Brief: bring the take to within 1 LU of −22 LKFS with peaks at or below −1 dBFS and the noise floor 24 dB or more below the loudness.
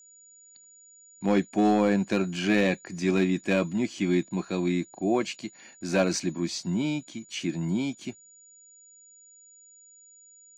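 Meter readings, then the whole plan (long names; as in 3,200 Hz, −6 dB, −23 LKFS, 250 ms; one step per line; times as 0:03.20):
share of clipped samples 0.4%; peaks flattened at −15.0 dBFS; interfering tone 6,900 Hz; level of the tone −52 dBFS; integrated loudness −27.0 LKFS; sample peak −15.0 dBFS; target loudness −22.0 LKFS
→ clipped peaks rebuilt −15 dBFS
notch filter 6,900 Hz, Q 30
level +5 dB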